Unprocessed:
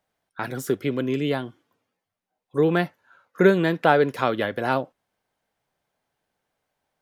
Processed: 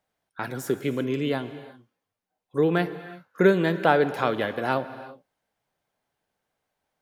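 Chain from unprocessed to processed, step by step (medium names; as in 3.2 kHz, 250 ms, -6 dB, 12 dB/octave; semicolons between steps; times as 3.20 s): gated-style reverb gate 390 ms flat, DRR 12 dB; trim -2 dB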